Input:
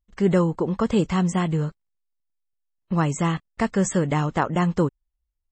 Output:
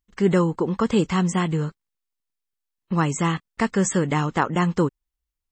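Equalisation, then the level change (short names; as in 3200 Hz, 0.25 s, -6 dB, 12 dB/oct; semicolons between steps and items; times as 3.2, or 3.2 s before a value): low shelf 120 Hz -9.5 dB; bell 630 Hz -6.5 dB 0.52 oct; +3.0 dB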